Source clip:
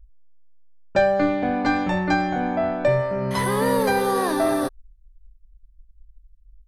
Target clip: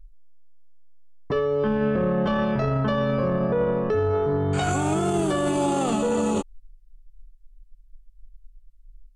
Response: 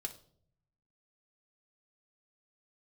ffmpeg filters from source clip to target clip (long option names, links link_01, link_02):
-af "alimiter=limit=-18.5dB:level=0:latency=1:release=12,asetrate=32193,aresample=44100,volume=3dB"